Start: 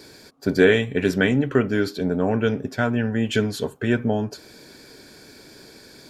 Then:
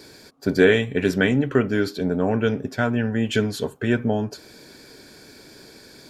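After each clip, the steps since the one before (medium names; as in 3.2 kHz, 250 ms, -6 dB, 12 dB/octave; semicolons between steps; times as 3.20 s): no audible change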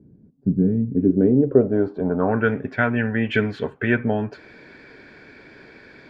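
low-pass sweep 190 Hz -> 2.1 kHz, 0.74–2.65 s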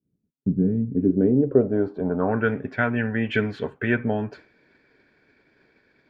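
expander -36 dBFS; trim -2.5 dB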